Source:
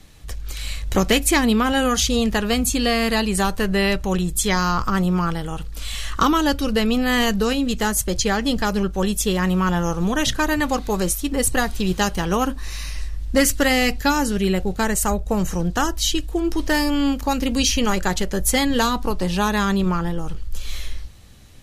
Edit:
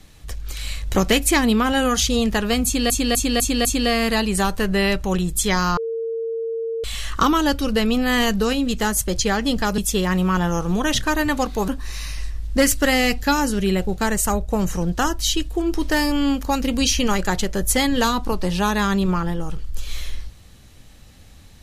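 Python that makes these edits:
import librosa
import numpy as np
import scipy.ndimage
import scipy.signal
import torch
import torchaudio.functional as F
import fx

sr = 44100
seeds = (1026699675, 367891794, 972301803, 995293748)

y = fx.edit(x, sr, fx.repeat(start_s=2.65, length_s=0.25, count=5),
    fx.bleep(start_s=4.77, length_s=1.07, hz=455.0, db=-22.5),
    fx.cut(start_s=8.78, length_s=0.32),
    fx.cut(start_s=11.0, length_s=1.46), tone=tone)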